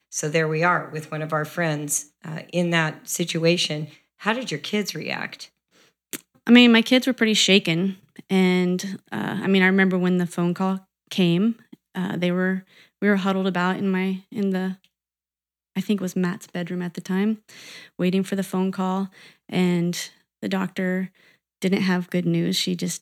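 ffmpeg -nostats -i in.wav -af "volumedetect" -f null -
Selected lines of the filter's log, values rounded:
mean_volume: -23.1 dB
max_volume: -1.8 dB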